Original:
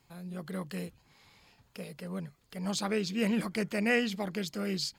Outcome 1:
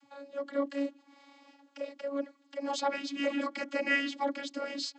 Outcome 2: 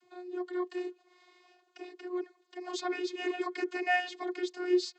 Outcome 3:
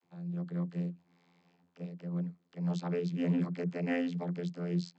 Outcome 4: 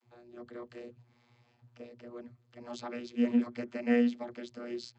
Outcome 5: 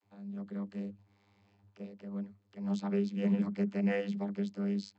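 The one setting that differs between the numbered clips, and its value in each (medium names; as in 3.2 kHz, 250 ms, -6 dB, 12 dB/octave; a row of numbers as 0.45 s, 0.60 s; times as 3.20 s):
vocoder, frequency: 280 Hz, 360 Hz, 87 Hz, 120 Hz, 100 Hz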